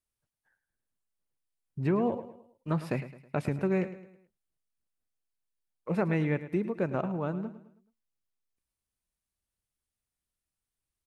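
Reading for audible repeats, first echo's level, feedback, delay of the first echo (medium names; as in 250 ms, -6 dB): 3, -14.0 dB, 42%, 107 ms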